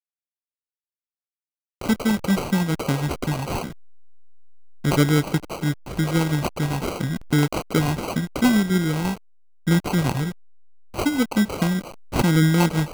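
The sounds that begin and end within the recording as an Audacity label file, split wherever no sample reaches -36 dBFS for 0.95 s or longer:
1.810000	3.710000	sound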